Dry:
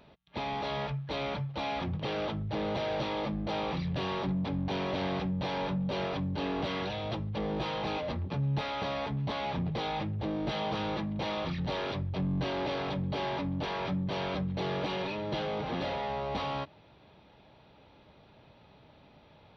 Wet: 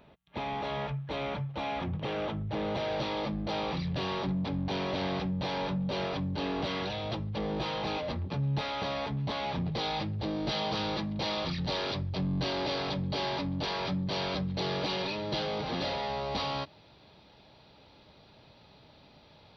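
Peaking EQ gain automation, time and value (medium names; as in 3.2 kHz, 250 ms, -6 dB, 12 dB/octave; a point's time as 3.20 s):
peaking EQ 4.7 kHz 0.71 oct
2.34 s -5.5 dB
3.10 s +5 dB
9.50 s +5 dB
9.94 s +12 dB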